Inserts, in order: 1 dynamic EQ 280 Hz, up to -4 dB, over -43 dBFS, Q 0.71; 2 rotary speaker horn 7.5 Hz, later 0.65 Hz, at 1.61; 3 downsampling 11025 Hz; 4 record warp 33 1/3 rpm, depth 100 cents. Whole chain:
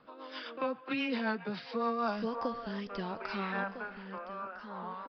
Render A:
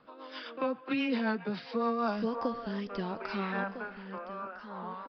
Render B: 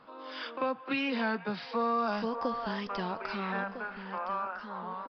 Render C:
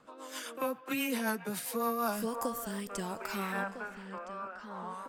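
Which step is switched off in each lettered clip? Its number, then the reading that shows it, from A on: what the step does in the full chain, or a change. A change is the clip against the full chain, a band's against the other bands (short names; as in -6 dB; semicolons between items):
1, 250 Hz band +3.0 dB; 2, loudness change +3.0 LU; 3, crest factor change +1.5 dB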